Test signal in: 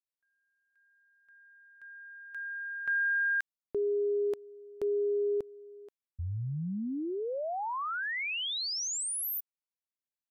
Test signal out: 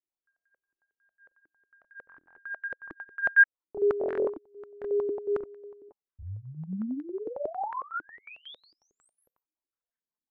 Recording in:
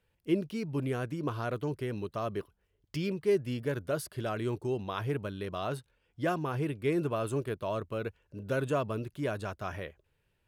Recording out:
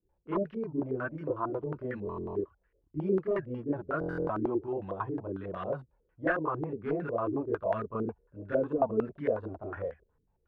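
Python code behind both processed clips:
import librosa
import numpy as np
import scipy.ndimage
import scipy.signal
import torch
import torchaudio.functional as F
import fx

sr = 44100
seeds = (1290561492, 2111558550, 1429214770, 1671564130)

y = 10.0 ** (-22.0 / 20.0) * (np.abs((x / 10.0 ** (-22.0 / 20.0) + 3.0) % 4.0 - 2.0) - 1.0)
y = fx.chorus_voices(y, sr, voices=6, hz=0.23, base_ms=29, depth_ms=3.2, mix_pct=65)
y = fx.buffer_glitch(y, sr, at_s=(2.05, 3.99), block=1024, repeats=12)
y = fx.filter_held_lowpass(y, sr, hz=11.0, low_hz=320.0, high_hz=1700.0)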